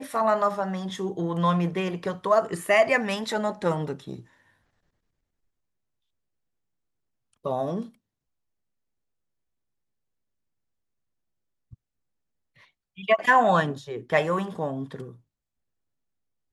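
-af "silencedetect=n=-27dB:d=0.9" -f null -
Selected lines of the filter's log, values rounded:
silence_start: 4.13
silence_end: 7.46 | silence_duration: 3.33
silence_start: 7.81
silence_end: 13.09 | silence_duration: 5.28
silence_start: 15.00
silence_end: 16.52 | silence_duration: 1.52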